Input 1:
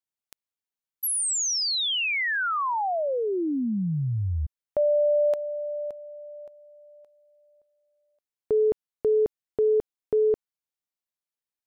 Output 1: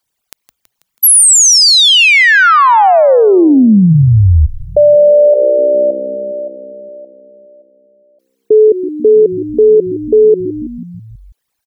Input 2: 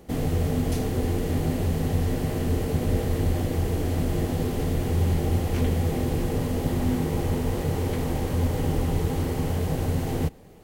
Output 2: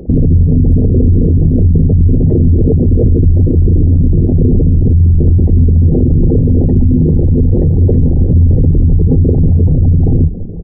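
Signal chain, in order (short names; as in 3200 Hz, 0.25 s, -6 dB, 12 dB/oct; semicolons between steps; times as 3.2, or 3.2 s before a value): formant sharpening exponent 3; frequency-shifting echo 0.163 s, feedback 65%, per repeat -64 Hz, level -18 dB; maximiser +22 dB; gain -1 dB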